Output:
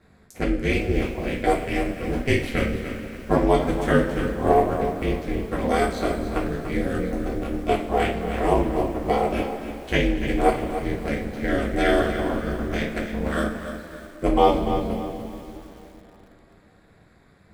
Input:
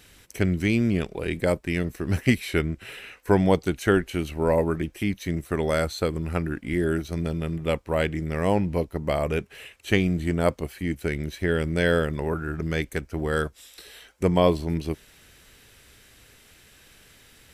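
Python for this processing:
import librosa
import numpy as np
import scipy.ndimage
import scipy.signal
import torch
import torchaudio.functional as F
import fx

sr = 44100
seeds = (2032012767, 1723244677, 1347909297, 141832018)

y = fx.wiener(x, sr, points=15)
y = fx.rev_double_slope(y, sr, seeds[0], early_s=0.33, late_s=3.7, knee_db=-19, drr_db=-6.0)
y = y * np.sin(2.0 * np.pi * 140.0 * np.arange(len(y)) / sr)
y = fx.echo_crushed(y, sr, ms=291, feedback_pct=35, bits=7, wet_db=-10.0)
y = F.gain(torch.from_numpy(y), -1.5).numpy()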